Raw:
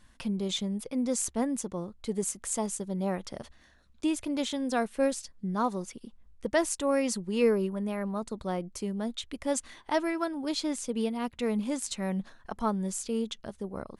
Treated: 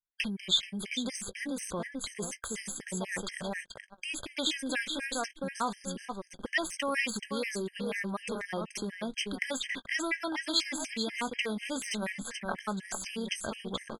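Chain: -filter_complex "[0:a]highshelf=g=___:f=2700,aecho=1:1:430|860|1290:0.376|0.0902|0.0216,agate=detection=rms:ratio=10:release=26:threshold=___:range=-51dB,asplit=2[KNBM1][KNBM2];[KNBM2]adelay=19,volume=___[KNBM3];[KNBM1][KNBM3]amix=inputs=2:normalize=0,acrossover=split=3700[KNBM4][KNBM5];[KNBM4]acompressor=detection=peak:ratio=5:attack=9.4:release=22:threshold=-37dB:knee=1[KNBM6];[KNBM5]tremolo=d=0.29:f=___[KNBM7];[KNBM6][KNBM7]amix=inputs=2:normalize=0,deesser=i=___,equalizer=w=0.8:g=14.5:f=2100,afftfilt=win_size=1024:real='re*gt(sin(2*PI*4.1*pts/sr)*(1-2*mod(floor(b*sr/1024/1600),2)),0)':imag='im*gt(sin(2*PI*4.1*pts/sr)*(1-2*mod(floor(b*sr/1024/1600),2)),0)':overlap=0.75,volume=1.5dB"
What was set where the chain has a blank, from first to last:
3.5, -47dB, -14dB, 0.84, 0.65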